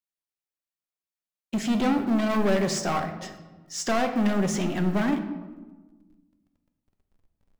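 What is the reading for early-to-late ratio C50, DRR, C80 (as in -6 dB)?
9.0 dB, 5.5 dB, 10.5 dB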